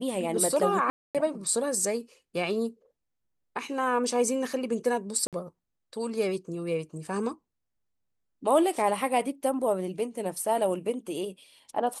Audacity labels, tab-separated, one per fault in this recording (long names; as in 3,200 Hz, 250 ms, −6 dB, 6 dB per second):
0.900000	1.150000	drop-out 247 ms
5.270000	5.330000	drop-out 57 ms